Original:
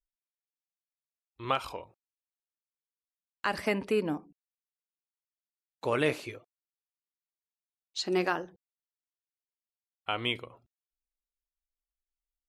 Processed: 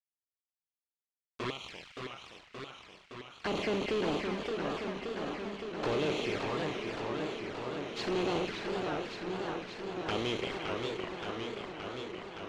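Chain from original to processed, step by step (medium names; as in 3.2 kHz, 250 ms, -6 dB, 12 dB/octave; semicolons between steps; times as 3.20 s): spectral levelling over time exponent 0.4; small samples zeroed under -30 dBFS; on a send: two-band feedback delay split 1.7 kHz, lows 600 ms, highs 173 ms, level -8 dB; on the sum: touch-sensitive flanger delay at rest 9 ms, full sweep at -23 dBFS; 1.50–3.45 s: amplifier tone stack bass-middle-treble 5-5-5; saturation -27 dBFS, distortion -8 dB; distance through air 120 m; modulated delay 571 ms, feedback 78%, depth 174 cents, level -5.5 dB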